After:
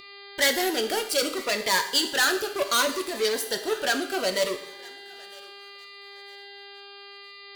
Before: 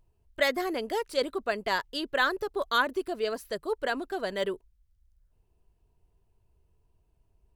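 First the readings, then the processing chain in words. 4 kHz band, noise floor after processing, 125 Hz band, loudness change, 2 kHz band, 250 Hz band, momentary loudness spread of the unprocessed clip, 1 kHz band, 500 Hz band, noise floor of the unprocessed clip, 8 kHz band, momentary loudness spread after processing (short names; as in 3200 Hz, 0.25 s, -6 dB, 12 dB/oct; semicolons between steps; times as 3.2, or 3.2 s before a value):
+10.0 dB, -45 dBFS, n/a, +5.5 dB, +4.5 dB, +3.5 dB, 7 LU, +2.0 dB, +3.0 dB, -71 dBFS, +19.5 dB, 21 LU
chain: sample leveller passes 3; high shelf 7600 Hz -4.5 dB; soft clip -19 dBFS, distortion -14 dB; tilt +3 dB/oct; buzz 400 Hz, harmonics 12, -44 dBFS -2 dB/oct; on a send: thinning echo 0.959 s, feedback 32%, high-pass 1000 Hz, level -20.5 dB; on the sum: two-slope reverb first 0.62 s, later 2.3 s, DRR 5.5 dB; cascading phaser falling 0.68 Hz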